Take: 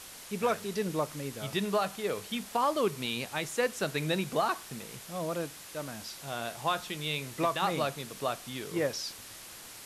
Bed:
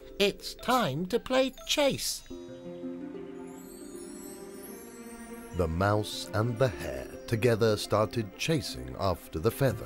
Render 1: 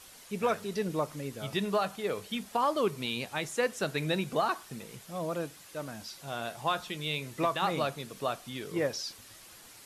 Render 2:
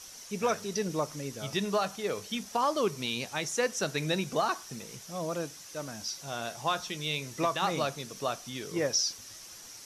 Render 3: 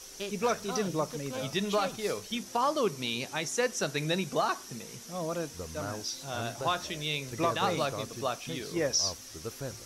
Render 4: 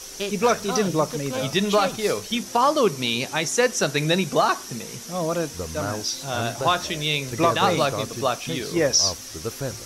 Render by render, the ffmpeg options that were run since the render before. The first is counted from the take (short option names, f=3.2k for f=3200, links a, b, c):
-af "afftdn=nr=7:nf=-48"
-af "equalizer=f=5.8k:w=3.1:g=14"
-filter_complex "[1:a]volume=-12.5dB[a];[0:a][a]amix=inputs=2:normalize=0"
-af "volume=9dB"